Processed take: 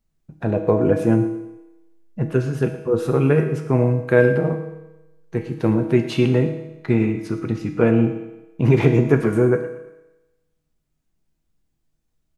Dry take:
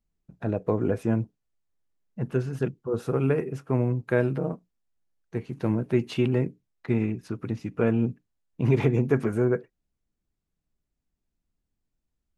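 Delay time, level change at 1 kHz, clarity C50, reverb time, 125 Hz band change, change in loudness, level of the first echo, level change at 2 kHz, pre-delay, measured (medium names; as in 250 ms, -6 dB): 114 ms, +7.5 dB, 8.0 dB, 1.0 s, +7.0 dB, +7.5 dB, -15.0 dB, +9.0 dB, 6 ms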